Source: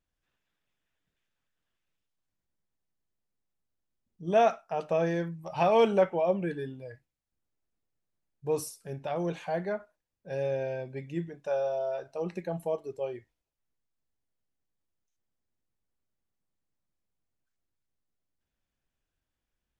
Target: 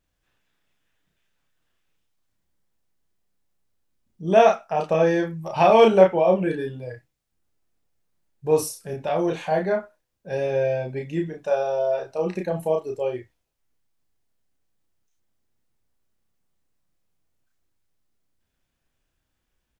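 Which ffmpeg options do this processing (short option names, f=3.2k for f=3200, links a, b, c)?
-filter_complex "[0:a]asplit=2[a][b];[b]adelay=32,volume=-3dB[c];[a][c]amix=inputs=2:normalize=0,volume=7dB"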